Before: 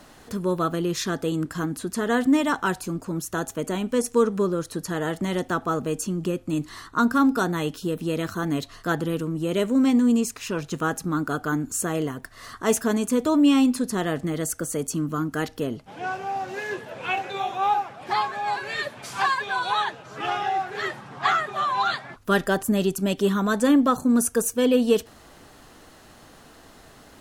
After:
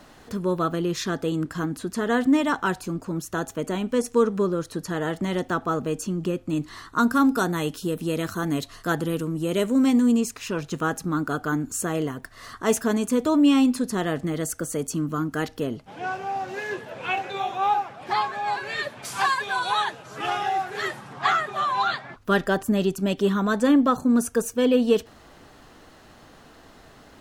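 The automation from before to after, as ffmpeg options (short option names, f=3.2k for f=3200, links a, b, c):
-af "asetnsamples=n=441:p=0,asendcmd='6.88 equalizer g 4;10.11 equalizer g -2.5;19.05 equalizer g 7;21.13 equalizer g 0.5;21.85 equalizer g -8',equalizer=f=11k:t=o:w=1.3:g=-5.5"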